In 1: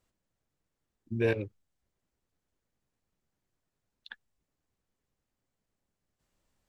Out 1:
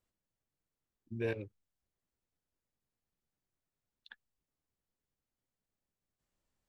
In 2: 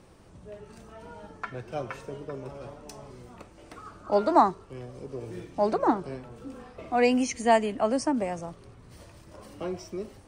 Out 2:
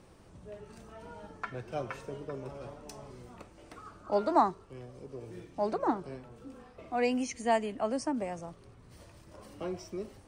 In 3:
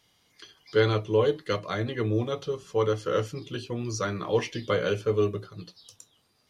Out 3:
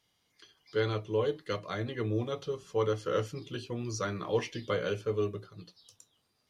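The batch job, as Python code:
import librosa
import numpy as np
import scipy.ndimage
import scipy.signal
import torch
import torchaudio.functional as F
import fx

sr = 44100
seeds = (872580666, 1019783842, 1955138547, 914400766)

y = fx.rider(x, sr, range_db=3, speed_s=2.0)
y = y * 10.0 ** (-5.5 / 20.0)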